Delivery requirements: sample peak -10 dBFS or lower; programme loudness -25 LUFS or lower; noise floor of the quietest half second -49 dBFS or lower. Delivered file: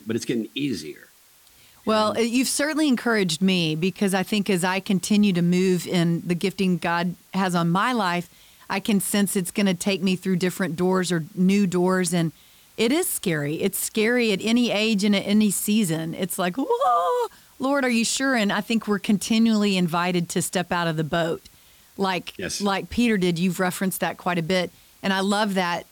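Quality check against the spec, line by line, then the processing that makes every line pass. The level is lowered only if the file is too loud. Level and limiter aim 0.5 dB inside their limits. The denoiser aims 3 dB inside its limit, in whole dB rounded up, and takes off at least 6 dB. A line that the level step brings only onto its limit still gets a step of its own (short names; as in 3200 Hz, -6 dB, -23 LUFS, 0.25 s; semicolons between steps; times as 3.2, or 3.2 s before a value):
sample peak -12.0 dBFS: OK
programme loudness -23.0 LUFS: fail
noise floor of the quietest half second -54 dBFS: OK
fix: gain -2.5 dB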